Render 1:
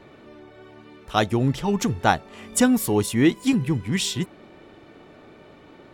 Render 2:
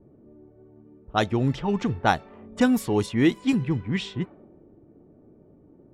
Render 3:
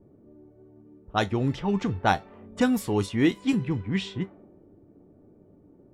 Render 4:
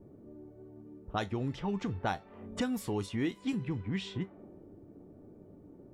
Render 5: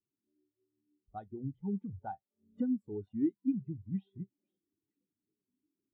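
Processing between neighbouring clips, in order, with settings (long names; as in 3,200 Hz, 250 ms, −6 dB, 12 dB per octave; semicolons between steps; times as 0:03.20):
low-pass that shuts in the quiet parts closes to 310 Hz, open at −15 dBFS; level −2 dB
tuned comb filter 97 Hz, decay 0.16 s, harmonics all, mix 60%; level +2.5 dB
downward compressor 2.5 to 1, threshold −37 dBFS, peak gain reduction 13.5 dB; level +1.5 dB
mains-hum notches 60/120 Hz; echo through a band-pass that steps 479 ms, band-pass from 3,300 Hz, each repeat −0.7 octaves, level −10 dB; every bin expanded away from the loudest bin 2.5 to 1; level −3 dB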